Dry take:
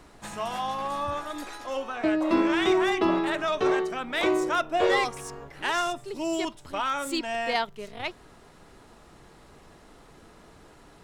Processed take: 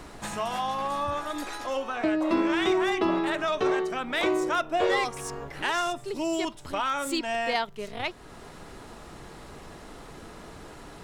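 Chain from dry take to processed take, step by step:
downward compressor 1.5 to 1, threshold −47 dBFS, peak gain reduction 10.5 dB
level +8 dB

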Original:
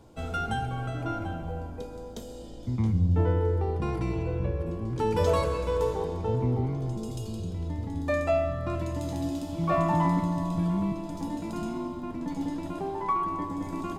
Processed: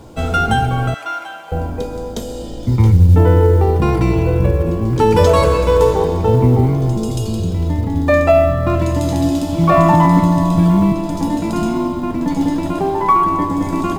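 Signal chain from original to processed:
0:00.94–0:01.52: high-pass filter 1,200 Hz 12 dB per octave
0:02.71–0:03.15: comb filter 2.2 ms, depth 55%
0:07.80–0:08.82: high-shelf EQ 6,100 Hz −9 dB
log-companded quantiser 8 bits
boost into a limiter +16 dB
level −1 dB

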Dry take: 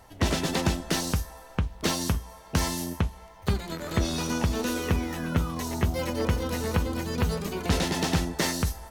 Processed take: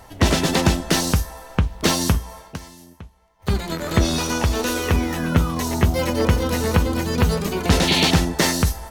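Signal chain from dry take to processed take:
0:02.40–0:03.57: duck −21 dB, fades 0.18 s
0:04.18–0:04.94: parametric band 190 Hz −7 dB 1.3 octaves
0:07.87–0:08.11: sound drawn into the spectrogram noise 2,100–4,600 Hz −29 dBFS
level +8 dB

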